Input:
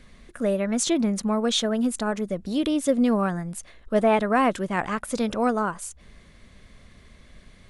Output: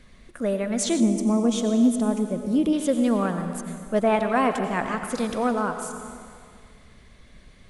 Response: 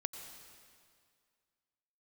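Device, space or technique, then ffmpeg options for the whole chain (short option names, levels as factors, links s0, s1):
stairwell: -filter_complex "[1:a]atrim=start_sample=2205[s0];[0:a][s0]afir=irnorm=-1:irlink=0,asettb=1/sr,asplit=3[s1][s2][s3];[s1]atrim=end=1.004[s4];[s2]atrim=start=1:end=2.73,asetpts=PTS-STARTPTS,afade=t=in:d=0.004:c=qsin,afade=t=out:st=1.726:d=0.004:c=qsin,equalizer=f=250:t=o:w=0.67:g=7,equalizer=f=1600:t=o:w=0.67:g=-11,equalizer=f=4000:t=o:w=0.67:g=-12[s5];[s3]atrim=start=2.726[s6];[s4][s5]acrossfade=d=0.004:c1=hsin:c2=qsin[s7];[s7][s6]acrossfade=d=0.004:c1=qsin:c2=hsin"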